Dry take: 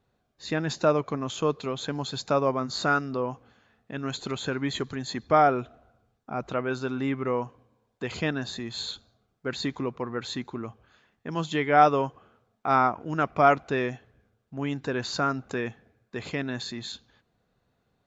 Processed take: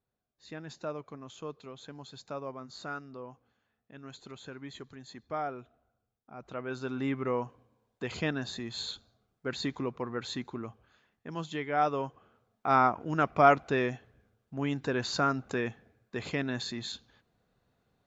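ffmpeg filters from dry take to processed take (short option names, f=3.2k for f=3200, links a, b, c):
-af "volume=5dB,afade=t=in:st=6.37:d=0.69:silence=0.266073,afade=t=out:st=10.48:d=1.28:silence=0.473151,afade=t=in:st=11.76:d=1.13:silence=0.375837"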